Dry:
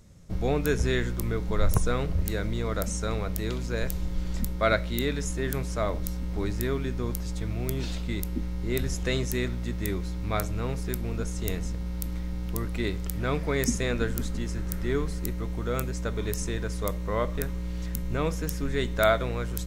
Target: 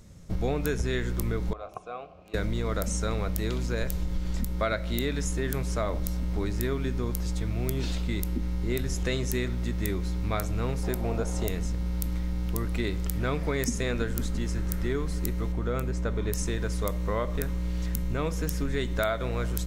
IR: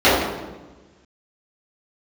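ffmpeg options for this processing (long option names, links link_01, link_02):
-filter_complex "[0:a]asettb=1/sr,asplit=3[link_01][link_02][link_03];[link_01]atrim=end=1.534[link_04];[link_02]atrim=start=1.53:end=2.34,asetpts=PTS-STARTPTS,afade=type=in:duration=0.004:curve=qsin,afade=type=out:start_time=0.806:duration=0.004:curve=qsin,asplit=3[link_05][link_06][link_07];[link_05]bandpass=frequency=730:width_type=q:width=8,volume=0dB[link_08];[link_06]bandpass=frequency=1090:width_type=q:width=8,volume=-6dB[link_09];[link_07]bandpass=frequency=2440:width_type=q:width=8,volume=-9dB[link_10];[link_08][link_09][link_10]amix=inputs=3:normalize=0[link_11];[link_03]atrim=start=2.336[link_12];[link_04][link_11]acrossfade=duration=0.004:curve1=hsin:curve2=qsin[link_13];[link_13][link_12]acrossfade=duration=0.004:curve1=qsin:curve2=hsin,asettb=1/sr,asplit=3[link_14][link_15][link_16];[link_14]atrim=end=10.834[link_17];[link_15]atrim=start=10.83:end=11.48,asetpts=PTS-STARTPTS,afade=type=in:duration=0.004:curve=qsin,afade=type=out:start_time=0.646:duration=0.004:curve=qsin,equalizer=frequency=700:width_type=o:width=1.1:gain=13[link_18];[link_16]atrim=start=11.476[link_19];[link_17][link_18]acrossfade=duration=0.004:curve1=hsin:curve2=qsin[link_20];[link_20][link_19]acrossfade=duration=0.004:curve1=qsin:curve2=hsin,asplit=2[link_21][link_22];[1:a]atrim=start_sample=2205[link_23];[link_22][link_23]afir=irnorm=-1:irlink=0,volume=-50dB[link_24];[link_21][link_24]amix=inputs=2:normalize=0,acompressor=threshold=-27dB:ratio=6,asettb=1/sr,asplit=3[link_25][link_26][link_27];[link_25]atrim=end=15.524[link_28];[link_26]atrim=start=15.52:end=16.33,asetpts=PTS-STARTPTS,afade=type=in:duration=0.004:curve=qsin,afade=type=out:start_time=0.806:duration=0.004:curve=qsin,highshelf=frequency=3300:gain=-9[link_29];[link_27]atrim=start=16.326[link_30];[link_28][link_29]acrossfade=duration=0.004:curve1=hsin:curve2=qsin[link_31];[link_31][link_30]acrossfade=duration=0.004:curve1=qsin:curve2=hsin,volume=3dB"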